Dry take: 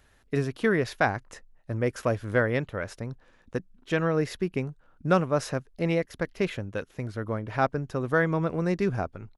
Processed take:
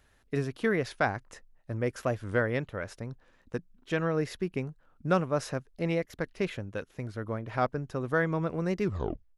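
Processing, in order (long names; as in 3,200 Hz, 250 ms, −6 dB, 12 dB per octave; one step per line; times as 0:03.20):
turntable brake at the end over 0.53 s
wow of a warped record 45 rpm, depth 100 cents
level −3.5 dB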